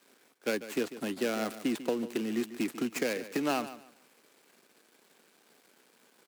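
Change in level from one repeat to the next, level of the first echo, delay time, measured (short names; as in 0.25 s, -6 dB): -12.5 dB, -14.0 dB, 0.145 s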